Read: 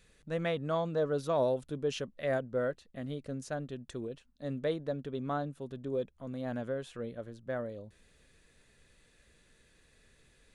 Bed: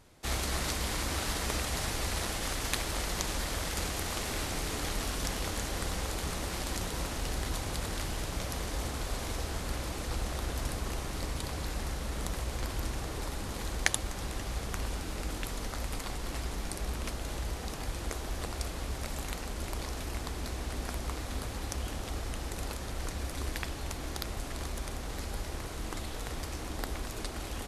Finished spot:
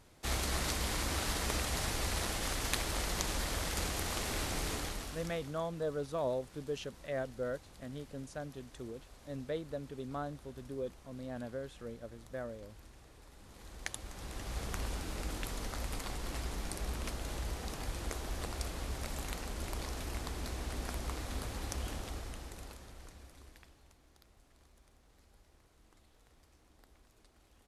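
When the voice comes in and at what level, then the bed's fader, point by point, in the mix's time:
4.85 s, -5.5 dB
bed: 4.72 s -2 dB
5.64 s -21.5 dB
13.25 s -21.5 dB
14.62 s -3 dB
21.92 s -3 dB
24.04 s -27.5 dB

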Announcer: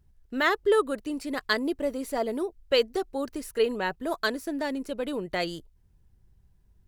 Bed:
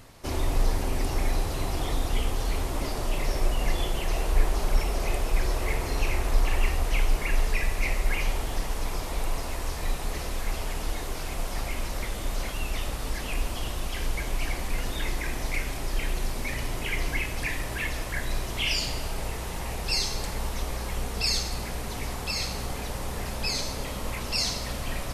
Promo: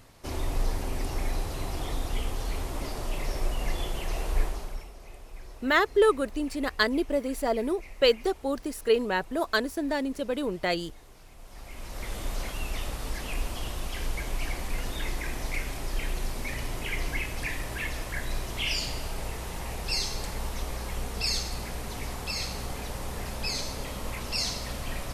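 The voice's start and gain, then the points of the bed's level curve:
5.30 s, +1.5 dB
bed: 4.42 s -4 dB
4.94 s -19.5 dB
11.37 s -19.5 dB
12.13 s -2.5 dB

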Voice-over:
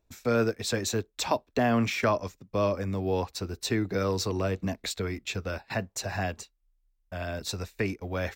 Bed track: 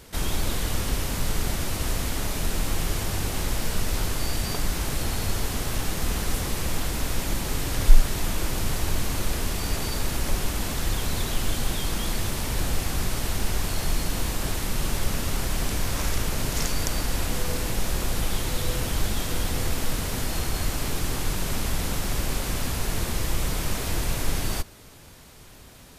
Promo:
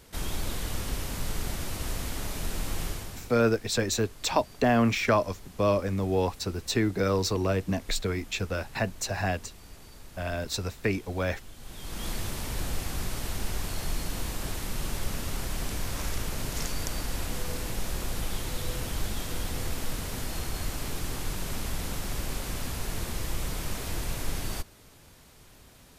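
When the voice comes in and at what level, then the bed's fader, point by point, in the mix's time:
3.05 s, +2.0 dB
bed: 2.86 s -6 dB
3.44 s -21.5 dB
11.55 s -21.5 dB
12.06 s -6 dB

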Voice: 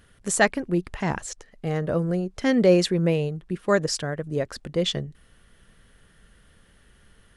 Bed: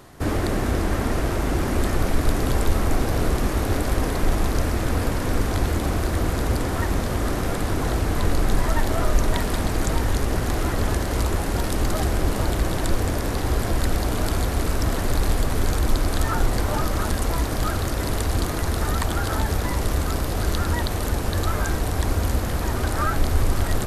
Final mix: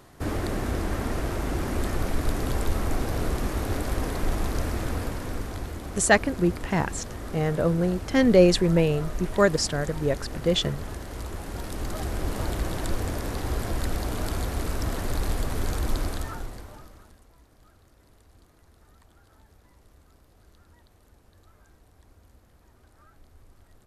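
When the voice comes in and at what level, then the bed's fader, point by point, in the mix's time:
5.70 s, +1.0 dB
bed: 4.81 s -5.5 dB
5.77 s -13 dB
11.19 s -13 dB
12.44 s -6 dB
16.04 s -6 dB
17.28 s -34 dB

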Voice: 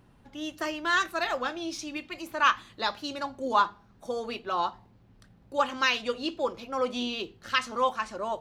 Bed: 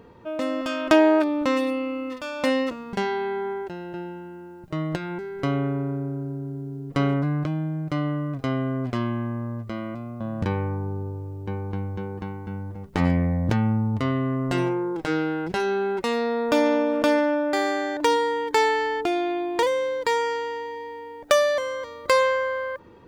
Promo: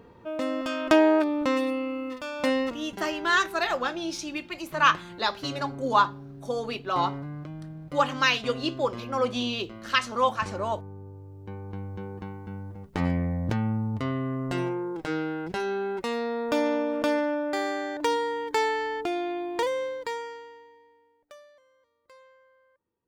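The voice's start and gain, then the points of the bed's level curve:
2.40 s, +2.5 dB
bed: 2.7 s -2.5 dB
2.95 s -12.5 dB
10.98 s -12.5 dB
12.07 s -5 dB
19.83 s -5 dB
21.57 s -35 dB

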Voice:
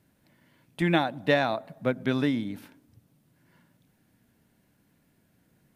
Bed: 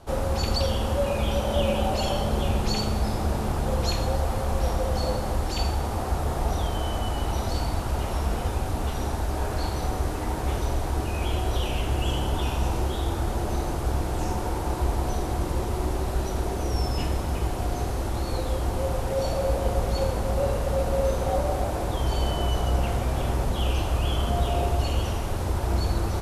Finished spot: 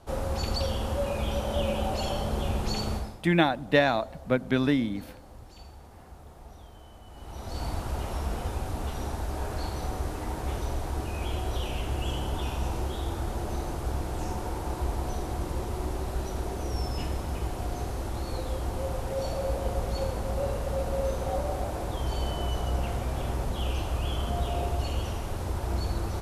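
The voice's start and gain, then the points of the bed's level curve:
2.45 s, +1.5 dB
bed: 2.95 s -4.5 dB
3.22 s -22 dB
7.04 s -22 dB
7.66 s -5 dB

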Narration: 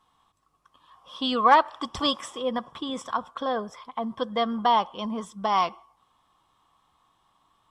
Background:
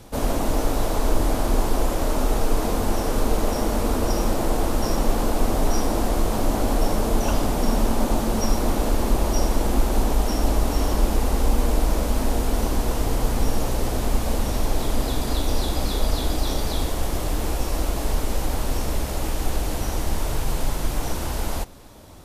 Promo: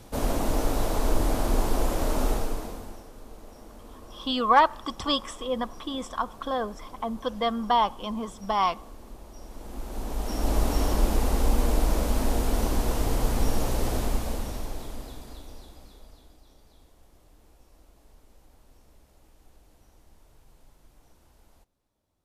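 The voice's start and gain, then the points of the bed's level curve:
3.05 s, -1.0 dB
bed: 2.29 s -3.5 dB
3.11 s -24.5 dB
9.37 s -24.5 dB
10.58 s -3 dB
13.96 s -3 dB
16.43 s -33 dB

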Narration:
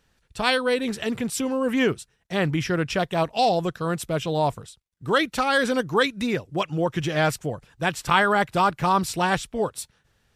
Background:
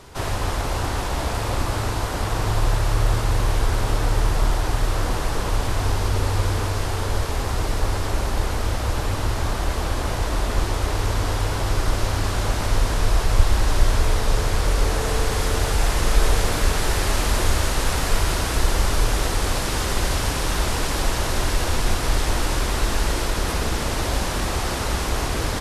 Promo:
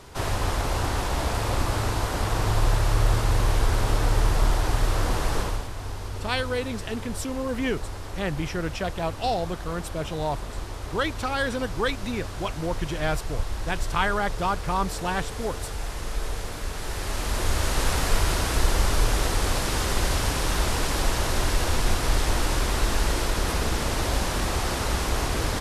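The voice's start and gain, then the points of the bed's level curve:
5.85 s, -5.5 dB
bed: 5.4 s -1.5 dB
5.7 s -12 dB
16.68 s -12 dB
17.8 s -2 dB

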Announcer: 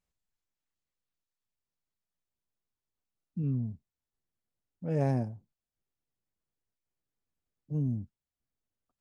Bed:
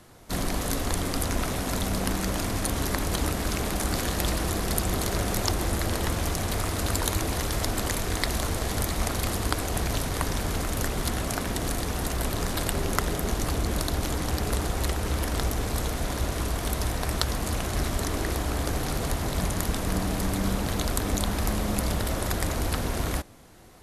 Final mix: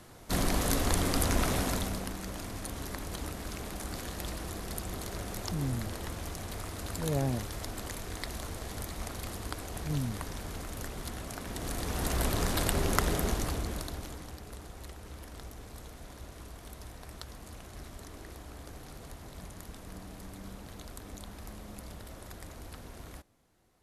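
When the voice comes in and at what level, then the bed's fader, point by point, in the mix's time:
2.15 s, -2.5 dB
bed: 1.61 s -0.5 dB
2.12 s -11.5 dB
11.38 s -11.5 dB
12.15 s -1.5 dB
13.2 s -1.5 dB
14.42 s -18.5 dB

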